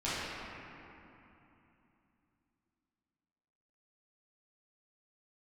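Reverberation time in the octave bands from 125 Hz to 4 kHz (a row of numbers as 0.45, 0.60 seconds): 3.8, 3.9, 2.9, 3.1, 2.7, 1.8 seconds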